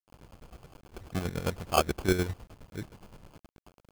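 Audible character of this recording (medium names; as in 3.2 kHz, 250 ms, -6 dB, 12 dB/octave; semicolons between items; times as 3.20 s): a quantiser's noise floor 8-bit, dither none; chopped level 9.6 Hz, depth 60%, duty 40%; aliases and images of a low sample rate 1.9 kHz, jitter 0%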